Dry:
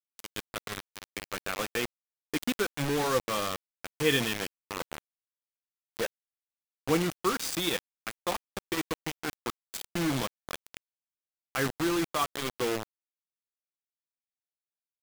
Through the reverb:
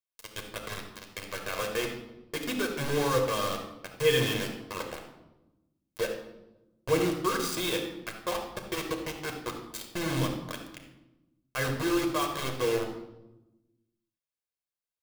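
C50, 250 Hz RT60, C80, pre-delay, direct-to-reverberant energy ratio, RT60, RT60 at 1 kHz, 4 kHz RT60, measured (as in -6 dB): 6.0 dB, 1.6 s, 8.5 dB, 8 ms, 2.5 dB, 1.0 s, 0.85 s, 0.70 s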